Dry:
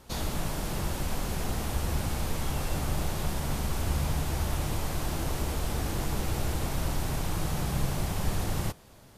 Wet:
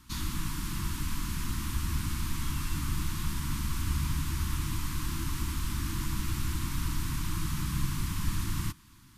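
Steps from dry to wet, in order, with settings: elliptic band-stop 320–1000 Hz, stop band 40 dB; trim -1 dB

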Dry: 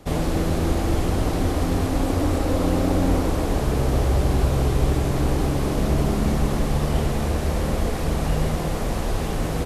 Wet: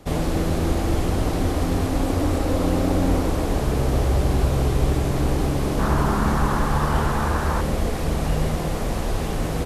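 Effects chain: 5.79–7.61 s: high-order bell 1.2 kHz +10.5 dB 1.2 oct

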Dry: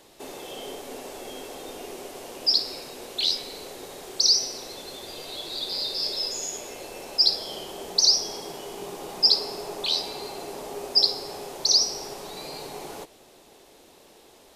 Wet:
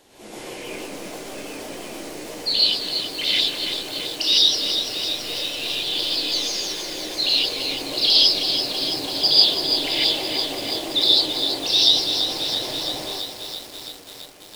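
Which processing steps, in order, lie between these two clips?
sawtooth pitch modulation -7 st, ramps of 162 ms; gated-style reverb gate 180 ms rising, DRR -7.5 dB; bit-crushed delay 333 ms, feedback 80%, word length 6-bit, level -7 dB; trim -2 dB

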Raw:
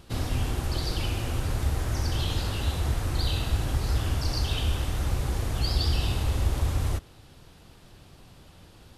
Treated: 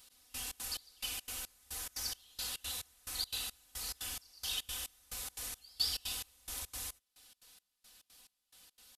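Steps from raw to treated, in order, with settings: pre-emphasis filter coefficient 0.97; comb 4 ms, depth 76%; trance gate "x...xx.x" 176 bpm -24 dB; trim +1 dB

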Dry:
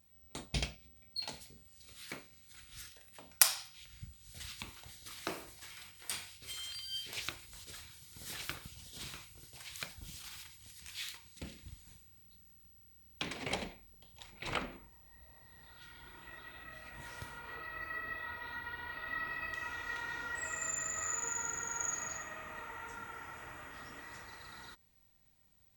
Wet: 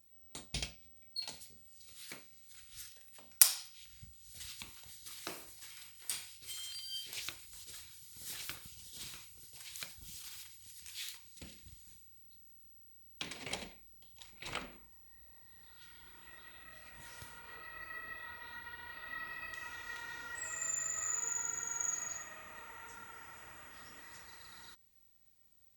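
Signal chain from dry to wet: treble shelf 3.5 kHz +10 dB; trim -7 dB

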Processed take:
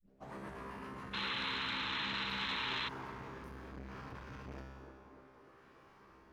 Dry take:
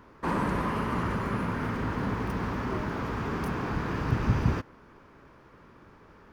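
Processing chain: tape start-up on the opening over 0.33 s; bass shelf 440 Hz -6.5 dB; reverse; compression, threshold -38 dBFS, peak gain reduction 13.5 dB; reverse; rotary cabinet horn 8 Hz, later 0.65 Hz, at 0.72 s; feedback comb 66 Hz, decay 1.2 s, harmonics all, mix 90%; painted sound noise, 1.13–2.89 s, 830–4200 Hz -47 dBFS; on a send: feedback echo behind a band-pass 298 ms, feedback 60%, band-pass 520 Hz, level -6.5 dB; on the sum: transformer saturation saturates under 1.1 kHz; trim +9.5 dB

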